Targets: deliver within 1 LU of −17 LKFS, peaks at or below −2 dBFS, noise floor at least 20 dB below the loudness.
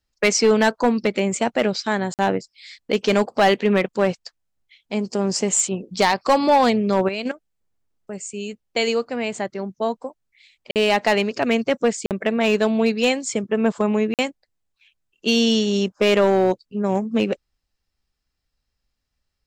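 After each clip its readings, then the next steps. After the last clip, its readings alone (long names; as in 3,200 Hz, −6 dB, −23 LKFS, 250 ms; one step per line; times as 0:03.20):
share of clipped samples 1.2%; peaks flattened at −10.0 dBFS; number of dropouts 4; longest dropout 48 ms; integrated loudness −20.5 LKFS; sample peak −10.0 dBFS; target loudness −17.0 LKFS
→ clipped peaks rebuilt −10 dBFS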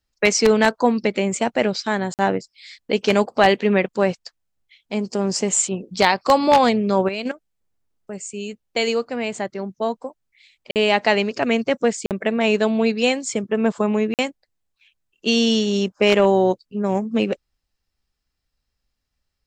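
share of clipped samples 0.0%; number of dropouts 4; longest dropout 48 ms
→ repair the gap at 0:02.14/0:10.71/0:12.06/0:14.14, 48 ms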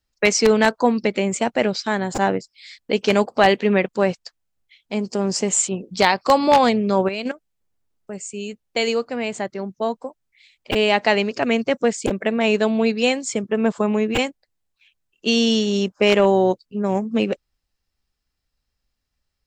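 number of dropouts 0; integrated loudness −20.0 LKFS; sample peak −1.0 dBFS; target loudness −17.0 LKFS
→ level +3 dB
brickwall limiter −2 dBFS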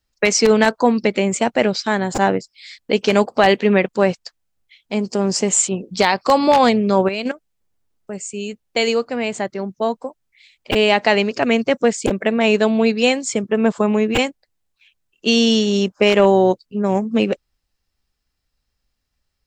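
integrated loudness −17.5 LKFS; sample peak −2.0 dBFS; background noise floor −74 dBFS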